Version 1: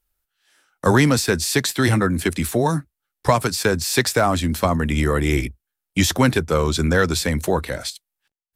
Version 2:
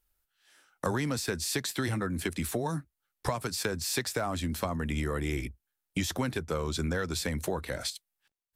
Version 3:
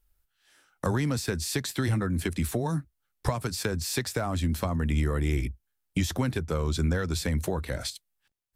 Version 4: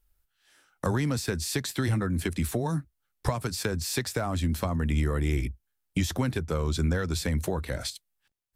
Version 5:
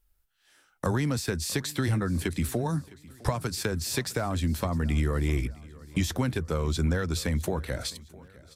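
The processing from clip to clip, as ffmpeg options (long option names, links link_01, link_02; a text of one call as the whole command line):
ffmpeg -i in.wav -af "acompressor=threshold=-28dB:ratio=4,volume=-2dB" out.wav
ffmpeg -i in.wav -af "lowshelf=frequency=170:gain=10" out.wav
ffmpeg -i in.wav -af anull out.wav
ffmpeg -i in.wav -af "aecho=1:1:659|1318|1977|2636:0.0841|0.0446|0.0236|0.0125" out.wav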